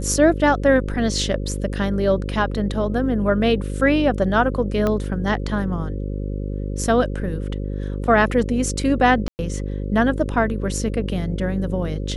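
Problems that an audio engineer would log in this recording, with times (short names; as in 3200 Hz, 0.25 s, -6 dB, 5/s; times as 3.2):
buzz 50 Hz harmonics 11 -26 dBFS
4.87 pop -10 dBFS
9.28–9.39 gap 0.109 s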